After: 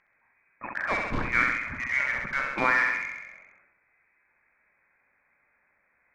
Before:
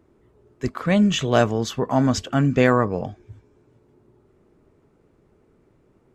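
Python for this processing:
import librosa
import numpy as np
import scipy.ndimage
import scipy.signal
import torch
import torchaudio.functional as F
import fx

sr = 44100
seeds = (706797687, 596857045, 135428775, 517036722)

p1 = scipy.signal.sosfilt(scipy.signal.butter(4, 740.0, 'highpass', fs=sr, output='sos'), x)
p2 = fx.freq_invert(p1, sr, carrier_hz=2900)
p3 = (np.mod(10.0 ** (26.0 / 20.0) * p2 + 1.0, 2.0) - 1.0) / 10.0 ** (26.0 / 20.0)
p4 = p2 + (p3 * 10.0 ** (-5.5 / 20.0))
p5 = fx.air_absorb(p4, sr, metres=170.0)
p6 = fx.echo_feedback(p5, sr, ms=66, feedback_pct=59, wet_db=-6)
y = fx.sustainer(p6, sr, db_per_s=51.0)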